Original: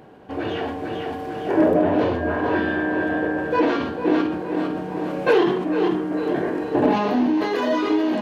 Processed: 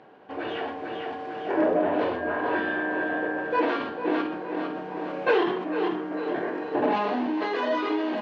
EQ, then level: high-pass 650 Hz 6 dB/octave; distance through air 180 m; 0.0 dB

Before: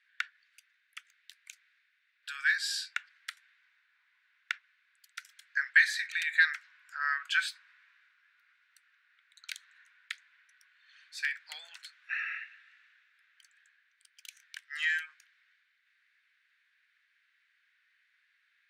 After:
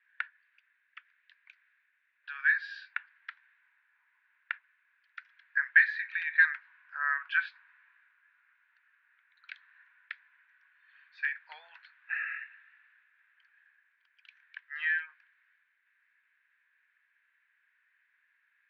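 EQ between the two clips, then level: distance through air 110 m; cabinet simulation 490–4600 Hz, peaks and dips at 950 Hz +9 dB, 1.7 kHz +7 dB, 2.5 kHz +5 dB; tilt EQ -5.5 dB/octave; 0.0 dB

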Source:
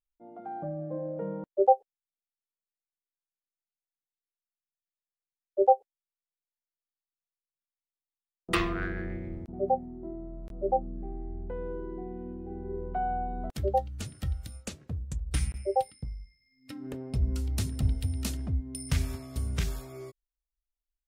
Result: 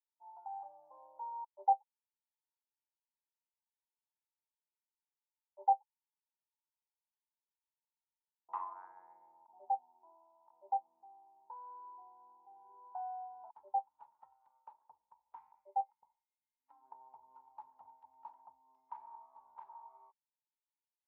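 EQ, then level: Butterworth band-pass 910 Hz, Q 7.9; +9.0 dB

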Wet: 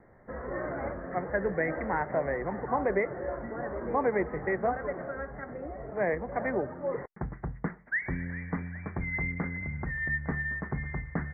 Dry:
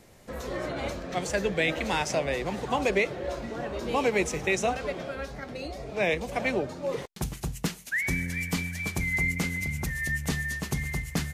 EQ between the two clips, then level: steep low-pass 2 kHz 96 dB/octave; bass shelf 430 Hz -3.5 dB; 0.0 dB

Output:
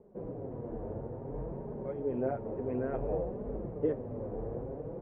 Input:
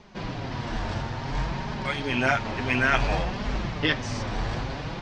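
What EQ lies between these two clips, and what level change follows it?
band-pass filter 470 Hz, Q 4.5; distance through air 470 m; tilt EQ -4.5 dB/octave; 0.0 dB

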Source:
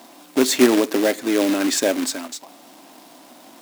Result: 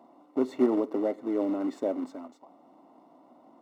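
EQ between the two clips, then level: Savitzky-Golay filter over 65 samples; hum notches 60/120/180 Hz; -9.0 dB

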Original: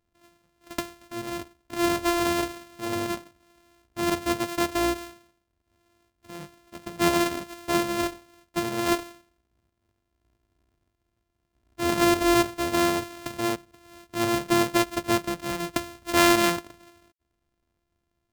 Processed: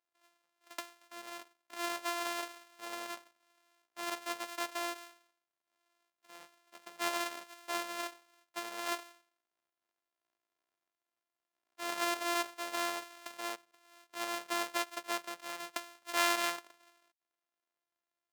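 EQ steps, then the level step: high-pass 690 Hz 12 dB/octave; treble shelf 12 kHz -3 dB; -8.5 dB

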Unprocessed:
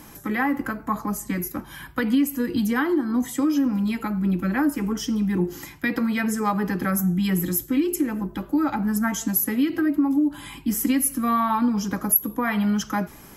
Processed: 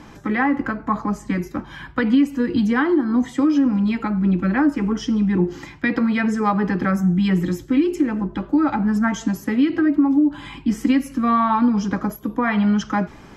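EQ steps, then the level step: distance through air 140 m; +4.5 dB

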